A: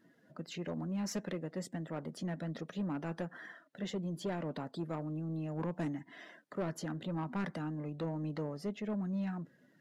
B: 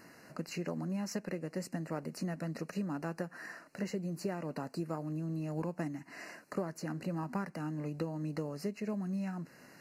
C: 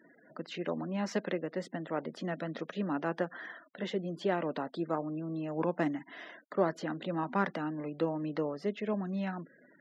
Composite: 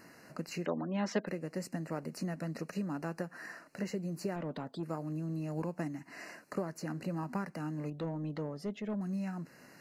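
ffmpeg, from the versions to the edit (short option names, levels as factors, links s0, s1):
-filter_complex "[0:a]asplit=2[s0][s1];[1:a]asplit=4[s2][s3][s4][s5];[s2]atrim=end=0.662[s6];[2:a]atrim=start=0.658:end=1.272[s7];[s3]atrim=start=1.268:end=4.362[s8];[s0]atrim=start=4.358:end=4.832[s9];[s4]atrim=start=4.828:end=7.902[s10];[s1]atrim=start=7.898:end=9.012[s11];[s5]atrim=start=9.008[s12];[s6][s7]acrossfade=d=0.004:c1=hsin:c2=hsin[s13];[s13][s8]acrossfade=d=0.004:c1=hsin:c2=hsin[s14];[s14][s9]acrossfade=d=0.004:c1=hsin:c2=hsin[s15];[s15][s10]acrossfade=d=0.004:c1=hsin:c2=hsin[s16];[s16][s11]acrossfade=d=0.004:c1=hsin:c2=hsin[s17];[s17][s12]acrossfade=d=0.004:c1=hsin:c2=hsin"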